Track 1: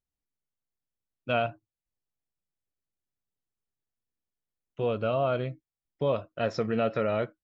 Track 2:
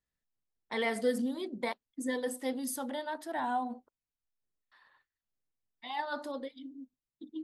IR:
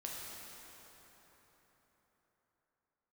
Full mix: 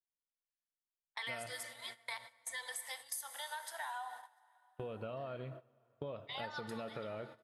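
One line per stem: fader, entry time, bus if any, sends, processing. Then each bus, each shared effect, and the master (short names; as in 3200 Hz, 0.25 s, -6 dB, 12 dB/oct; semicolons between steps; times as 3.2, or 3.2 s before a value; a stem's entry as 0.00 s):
-8.5 dB, 0.00 s, send -10.5 dB, no echo send, compressor 1.5:1, threshold -31 dBFS, peak gain reduction 4 dB
-2.0 dB, 0.45 s, send -5.5 dB, echo send -22 dB, HPF 900 Hz 24 dB/oct; high shelf 3000 Hz +5.5 dB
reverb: on, RT60 4.4 s, pre-delay 3 ms
echo: echo 0.696 s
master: gate -46 dBFS, range -17 dB; compressor 5:1, threshold -40 dBFS, peak gain reduction 12 dB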